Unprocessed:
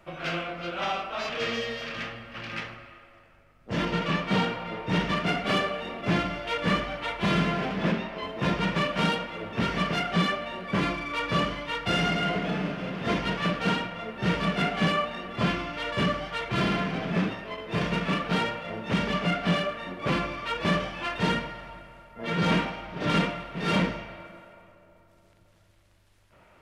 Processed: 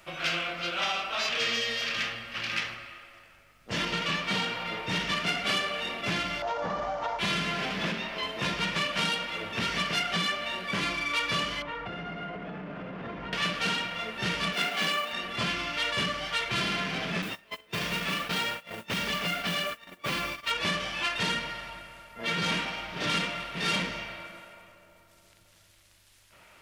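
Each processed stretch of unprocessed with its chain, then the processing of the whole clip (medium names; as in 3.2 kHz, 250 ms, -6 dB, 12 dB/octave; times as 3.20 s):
6.42–7.19 s: CVSD coder 32 kbps + FFT filter 360 Hz 0 dB, 780 Hz +14 dB, 2.4 kHz -14 dB + compression, threshold -23 dBFS
11.62–13.33 s: companding laws mixed up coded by mu + low-pass 1.2 kHz + compression 12:1, threshold -32 dBFS
14.53–15.13 s: high-pass 230 Hz + short-mantissa float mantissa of 4-bit
17.22–20.51 s: gate -35 dBFS, range -21 dB + compression 1.5:1, threshold -30 dBFS + modulation noise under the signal 28 dB
whole clip: treble shelf 2.4 kHz +8.5 dB; compression 3:1, threshold -27 dBFS; tilt shelf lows -4 dB, about 1.3 kHz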